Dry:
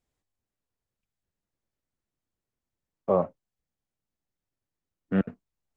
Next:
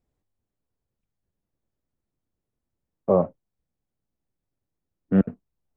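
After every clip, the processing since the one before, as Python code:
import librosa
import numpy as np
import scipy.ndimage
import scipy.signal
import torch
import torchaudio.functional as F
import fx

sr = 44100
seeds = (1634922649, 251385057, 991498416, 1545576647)

y = fx.tilt_shelf(x, sr, db=6.5, hz=1100.0)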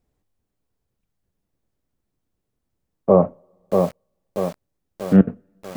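y = fx.rev_double_slope(x, sr, seeds[0], early_s=0.28, late_s=2.0, knee_db=-27, drr_db=16.5)
y = fx.echo_crushed(y, sr, ms=637, feedback_pct=55, bits=7, wet_db=-4)
y = y * librosa.db_to_amplitude(5.5)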